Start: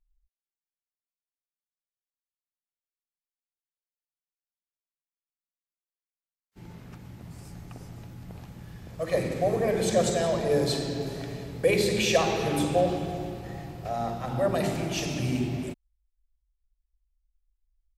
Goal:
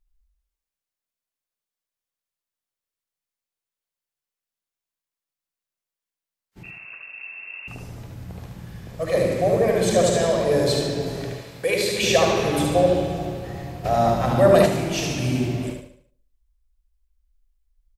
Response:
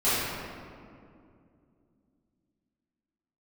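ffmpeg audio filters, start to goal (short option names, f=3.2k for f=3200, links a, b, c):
-filter_complex "[0:a]asplit=2[a][b];[b]adelay=72,lowpass=f=880:p=1,volume=-10dB,asplit=2[c][d];[d]adelay=72,lowpass=f=880:p=1,volume=0.47,asplit=2[e][f];[f]adelay=72,lowpass=f=880:p=1,volume=0.47,asplit=2[g][h];[h]adelay=72,lowpass=f=880:p=1,volume=0.47,asplit=2[i][j];[j]adelay=72,lowpass=f=880:p=1,volume=0.47[k];[a][c][e][g][i][k]amix=inputs=6:normalize=0,asettb=1/sr,asplit=3[l][m][n];[l]atrim=end=6.634[o];[m]atrim=start=6.63:end=7.68,asetpts=PTS-STARTPTS,afade=t=in:d=0.004:c=qsin,afade=t=out:st=1.046:d=0.004:c=qsin,lowpass=f=2.4k:t=q:w=0.5098,lowpass=f=2.4k:t=q:w=0.6013,lowpass=f=2.4k:t=q:w=0.9,lowpass=f=2.4k:t=q:w=2.563,afreqshift=-2800[p];[n]atrim=start=7.676[q];[o][p]acrossfade=d=0.004:c1=hsin:c2=qsin[r];[r][q]acrossfade=d=0.004:c1=qsin:c2=hsin,asettb=1/sr,asplit=3[s][t][u];[s]atrim=end=11.344[v];[t]atrim=start=11.34:end=12.03,asetpts=PTS-STARTPTS,afade=t=in:d=0.004:c=qsin,afade=t=out:st=0.686:d=0.004:c=qsin,lowshelf=f=480:g=-11.5[w];[u]atrim=start=12.026[x];[v][w]acrossfade=d=0.004:c1=hsin:c2=qsin[y];[y][x]acrossfade=d=0.004:c1=qsin:c2=hsin,aecho=1:1:74|148|222|296|370:0.562|0.231|0.0945|0.0388|0.0159,asettb=1/sr,asplit=3[z][aa][ab];[z]atrim=end=13.844[ac];[aa]atrim=start=13.84:end=14.66,asetpts=PTS-STARTPTS,afade=t=in:d=0.004:c=qsin,afade=t=out:st=0.816:d=0.004:c=qsin,acontrast=46[ad];[ab]atrim=start=14.656[ae];[ac][ad]acrossfade=d=0.004:c1=hsin:c2=qsin[af];[af][ae]acrossfade=d=0.004:c1=qsin:c2=hsin,volume=4dB"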